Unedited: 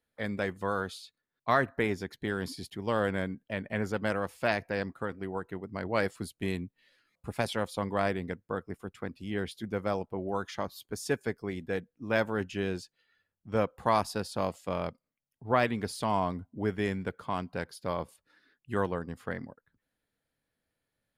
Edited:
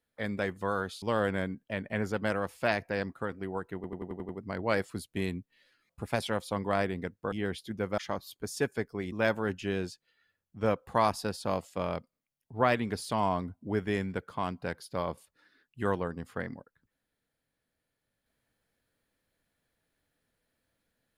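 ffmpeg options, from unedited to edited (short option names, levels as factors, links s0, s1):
-filter_complex "[0:a]asplit=11[s0][s1][s2][s3][s4][s5][s6][s7][s8][s9][s10];[s0]atrim=end=1.022[s11];[s1]atrim=start=2.818:end=5.642[s12];[s2]atrim=start=5.548:end=5.642[s13];[s3]atrim=start=5.548:end=5.642[s14];[s4]atrim=start=5.548:end=5.642[s15];[s5]atrim=start=5.548:end=5.642[s16];[s6]atrim=start=5.548:end=5.642[s17];[s7]atrim=start=5.548:end=8.582[s18];[s8]atrim=start=9.248:end=9.912[s19];[s9]atrim=start=10.468:end=11.612[s20];[s10]atrim=start=12.028[s21];[s11][s12]acrossfade=d=0.004:c1=hsin:c2=hsin[s22];[s22][s13]acrossfade=d=0.004:c1=hsin:c2=hsin[s23];[s23][s14]acrossfade=d=0.004:c1=hsin:c2=hsin[s24];[s24][s15]acrossfade=d=0.004:c1=hsin:c2=hsin[s25];[s25][s16]acrossfade=d=0.004:c1=hsin:c2=hsin[s26];[s26][s17]acrossfade=d=0.004:c1=hsin:c2=hsin[s27];[s27][s18]acrossfade=d=0.004:c1=hsin:c2=hsin[s28];[s28][s19]acrossfade=d=0.004:c1=hsin:c2=hsin[s29];[s29][s20]acrossfade=d=0.004:c1=hsin:c2=hsin[s30];[s30][s21]acrossfade=d=0.004:c1=hsin:c2=hsin"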